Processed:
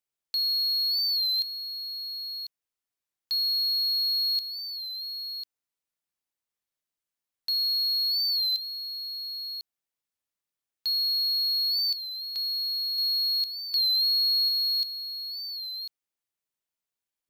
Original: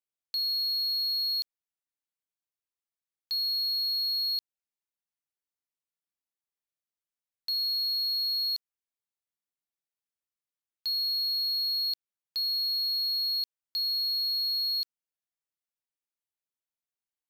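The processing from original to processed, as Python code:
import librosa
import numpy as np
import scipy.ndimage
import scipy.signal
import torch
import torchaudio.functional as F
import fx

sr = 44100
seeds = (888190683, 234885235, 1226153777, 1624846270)

p1 = x + fx.echo_single(x, sr, ms=1046, db=-9.5, dry=0)
p2 = fx.record_warp(p1, sr, rpm=33.33, depth_cents=100.0)
y = F.gain(torch.from_numpy(p2), 3.0).numpy()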